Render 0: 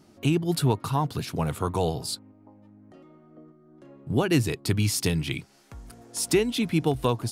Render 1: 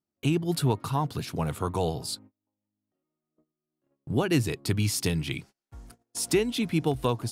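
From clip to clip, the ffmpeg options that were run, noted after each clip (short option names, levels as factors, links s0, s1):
-af "agate=range=0.0251:threshold=0.00631:ratio=16:detection=peak,volume=0.794"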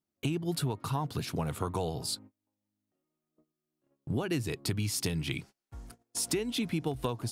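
-af "acompressor=threshold=0.0398:ratio=6"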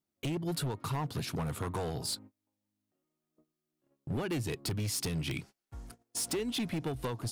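-af "asoftclip=type=hard:threshold=0.0335"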